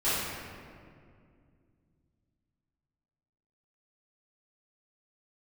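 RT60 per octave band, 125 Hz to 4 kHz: 3.6 s, 3.3 s, 2.5 s, 2.0 s, 1.8 s, 1.3 s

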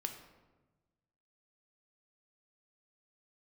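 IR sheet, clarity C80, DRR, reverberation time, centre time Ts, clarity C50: 10.0 dB, 4.5 dB, 1.2 s, 20 ms, 8.0 dB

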